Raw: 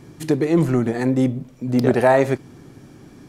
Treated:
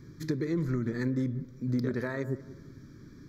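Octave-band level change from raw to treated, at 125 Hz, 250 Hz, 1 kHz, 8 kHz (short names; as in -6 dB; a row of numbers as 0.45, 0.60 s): -9.0 dB, -11.5 dB, -24.5 dB, under -10 dB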